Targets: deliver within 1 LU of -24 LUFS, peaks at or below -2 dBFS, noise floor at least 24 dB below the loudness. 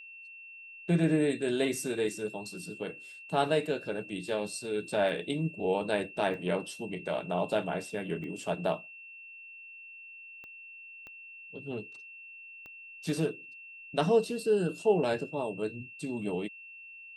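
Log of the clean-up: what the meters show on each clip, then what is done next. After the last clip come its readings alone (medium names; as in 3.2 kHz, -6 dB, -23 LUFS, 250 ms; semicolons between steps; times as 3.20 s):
clicks found 6; steady tone 2.7 kHz; tone level -46 dBFS; loudness -32.0 LUFS; peak level -14.0 dBFS; loudness target -24.0 LUFS
-> de-click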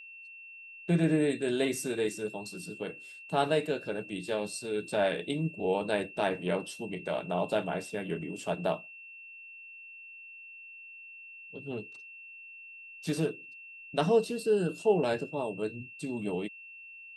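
clicks found 0; steady tone 2.7 kHz; tone level -46 dBFS
-> band-stop 2.7 kHz, Q 30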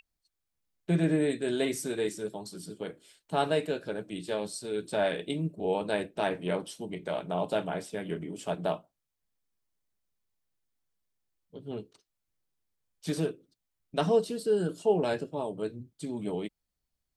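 steady tone not found; loudness -32.0 LUFS; peak level -14.0 dBFS; loudness target -24.0 LUFS
-> trim +8 dB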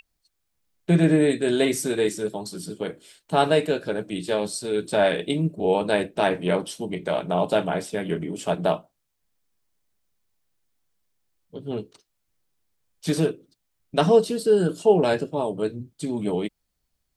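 loudness -24.0 LUFS; peak level -6.0 dBFS; noise floor -77 dBFS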